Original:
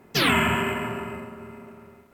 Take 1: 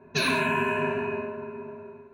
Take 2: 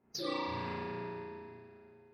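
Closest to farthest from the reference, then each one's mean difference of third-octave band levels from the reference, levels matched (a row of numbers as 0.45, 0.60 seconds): 1, 2; 5.5, 7.5 decibels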